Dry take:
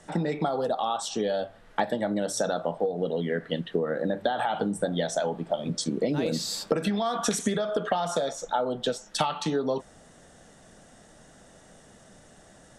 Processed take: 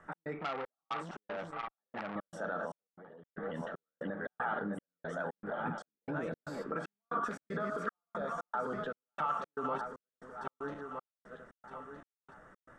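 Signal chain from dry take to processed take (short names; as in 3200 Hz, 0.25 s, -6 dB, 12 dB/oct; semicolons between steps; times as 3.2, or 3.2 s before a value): regenerating reverse delay 0.632 s, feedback 57%, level -6.5 dB; limiter -21.5 dBFS, peak gain reduction 11 dB; EQ curve 770 Hz 0 dB, 1300 Hz +14 dB, 4100 Hz -17 dB; 2.87–3.38 gate -25 dBFS, range -16 dB; step gate "x.xxx..x" 116 bpm -60 dB; 0.39–2.16 core saturation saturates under 1800 Hz; gain -8 dB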